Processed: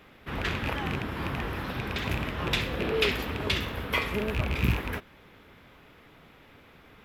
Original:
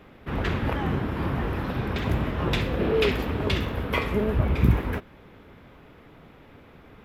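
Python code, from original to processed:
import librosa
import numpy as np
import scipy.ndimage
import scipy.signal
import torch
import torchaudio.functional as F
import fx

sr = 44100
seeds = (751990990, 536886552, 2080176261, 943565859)

y = fx.rattle_buzz(x, sr, strikes_db=-22.0, level_db=-22.0)
y = fx.tilt_shelf(y, sr, db=-5.0, hz=1300.0)
y = y * 10.0 ** (-1.5 / 20.0)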